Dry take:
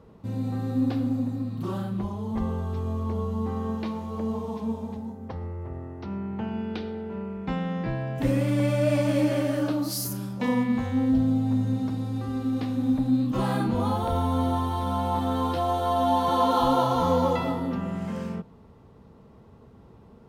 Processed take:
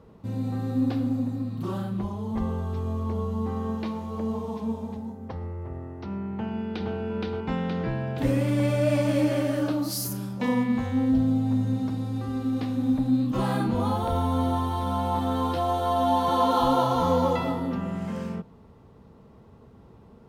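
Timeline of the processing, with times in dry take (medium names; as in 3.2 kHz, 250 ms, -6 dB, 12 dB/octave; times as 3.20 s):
6.33–6.93 s: echo throw 470 ms, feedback 65%, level 0 dB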